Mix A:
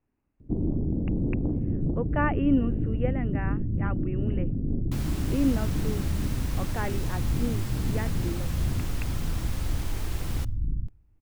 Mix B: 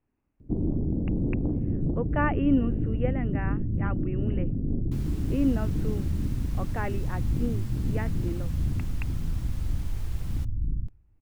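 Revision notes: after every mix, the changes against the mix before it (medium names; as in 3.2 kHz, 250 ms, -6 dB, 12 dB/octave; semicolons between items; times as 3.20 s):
second sound -9.5 dB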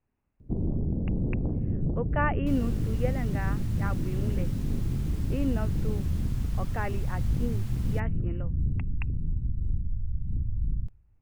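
second sound: entry -2.45 s; master: add peaking EQ 300 Hz -7 dB 0.57 oct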